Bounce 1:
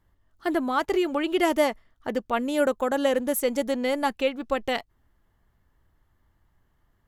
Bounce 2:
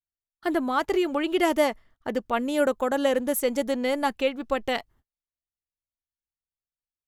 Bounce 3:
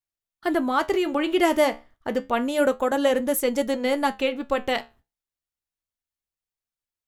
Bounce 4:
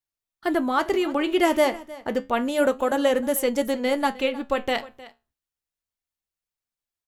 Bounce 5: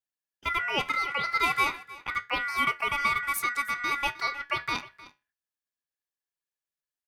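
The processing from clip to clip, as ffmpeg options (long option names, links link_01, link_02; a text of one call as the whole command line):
ffmpeg -i in.wav -af "agate=range=-39dB:threshold=-54dB:ratio=16:detection=peak" out.wav
ffmpeg -i in.wav -af "flanger=delay=8.2:depth=7.3:regen=-69:speed=0.3:shape=triangular,volume=6.5dB" out.wav
ffmpeg -i in.wav -af "aecho=1:1:309:0.112" out.wav
ffmpeg -i in.wav -af "aeval=exprs='val(0)*sin(2*PI*1700*n/s)':channel_layout=same,volume=-3dB" out.wav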